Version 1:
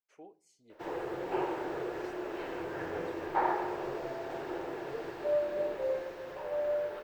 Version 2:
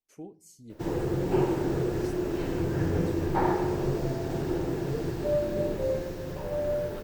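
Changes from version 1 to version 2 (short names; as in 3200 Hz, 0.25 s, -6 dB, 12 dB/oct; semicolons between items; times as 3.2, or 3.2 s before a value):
speech: remove LPF 8300 Hz 12 dB/oct; master: remove three-band isolator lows -23 dB, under 450 Hz, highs -14 dB, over 3300 Hz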